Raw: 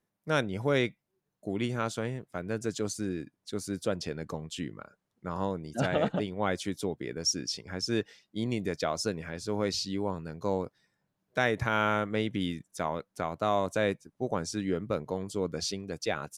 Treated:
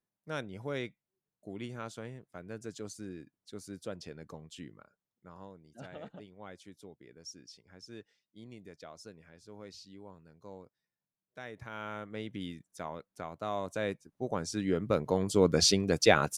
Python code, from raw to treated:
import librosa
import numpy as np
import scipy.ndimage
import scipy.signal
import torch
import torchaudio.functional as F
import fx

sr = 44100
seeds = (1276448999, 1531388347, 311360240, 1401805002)

y = fx.gain(x, sr, db=fx.line((4.7, -10.0), (5.52, -18.5), (11.41, -18.5), (12.36, -8.5), (13.41, -8.5), (14.48, -2.0), (15.61, 9.0)))